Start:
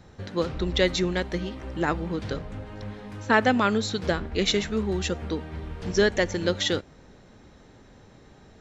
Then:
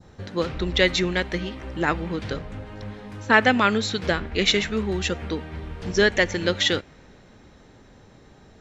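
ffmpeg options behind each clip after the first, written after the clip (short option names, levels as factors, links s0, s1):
-af "adynamicequalizer=threshold=0.0112:dfrequency=2300:dqfactor=0.93:tfrequency=2300:tqfactor=0.93:attack=5:release=100:ratio=0.375:range=3.5:mode=boostabove:tftype=bell,volume=1.12"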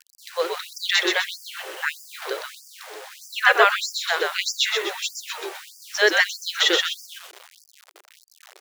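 -filter_complex "[0:a]asplit=2[s0][s1];[s1]asplit=6[s2][s3][s4][s5][s6][s7];[s2]adelay=126,afreqshift=-86,volume=0.708[s8];[s3]adelay=252,afreqshift=-172,volume=0.327[s9];[s4]adelay=378,afreqshift=-258,volume=0.15[s10];[s5]adelay=504,afreqshift=-344,volume=0.0692[s11];[s6]adelay=630,afreqshift=-430,volume=0.0316[s12];[s7]adelay=756,afreqshift=-516,volume=0.0146[s13];[s8][s9][s10][s11][s12][s13]amix=inputs=6:normalize=0[s14];[s0][s14]amix=inputs=2:normalize=0,acrusher=bits=6:mix=0:aa=0.000001,afftfilt=real='re*gte(b*sr/1024,320*pow(4700/320,0.5+0.5*sin(2*PI*1.6*pts/sr)))':imag='im*gte(b*sr/1024,320*pow(4700/320,0.5+0.5*sin(2*PI*1.6*pts/sr)))':win_size=1024:overlap=0.75,volume=1.33"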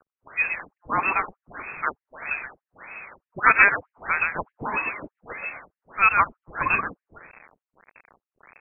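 -af "lowpass=f=2600:t=q:w=0.5098,lowpass=f=2600:t=q:w=0.6013,lowpass=f=2600:t=q:w=0.9,lowpass=f=2600:t=q:w=2.563,afreqshift=-3000"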